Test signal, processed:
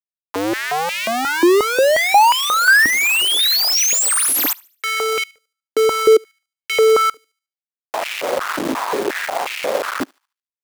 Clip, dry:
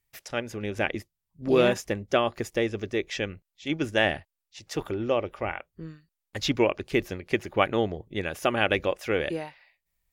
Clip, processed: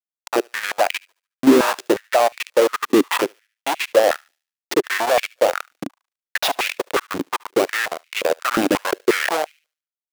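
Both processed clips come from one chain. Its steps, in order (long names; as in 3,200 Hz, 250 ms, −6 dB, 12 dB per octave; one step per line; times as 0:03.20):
each half-wave held at its own peak
downward expander −39 dBFS
in parallel at +3 dB: downward compressor 8 to 1, threshold −29 dBFS
on the sum: brickwall limiter −13.5 dBFS
bit reduction 4 bits
on a send: feedback echo with a high-pass in the loop 73 ms, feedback 37%, high-pass 1,200 Hz, level −24 dB
on the sum: high-pass on a step sequencer 5.6 Hz 280–2,400 Hz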